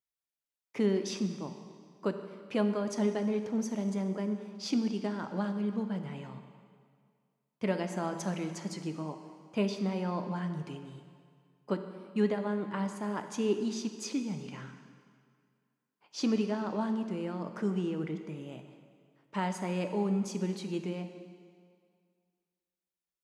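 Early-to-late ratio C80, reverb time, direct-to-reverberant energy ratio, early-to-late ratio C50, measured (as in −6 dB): 9.0 dB, 2.1 s, 6.5 dB, 8.0 dB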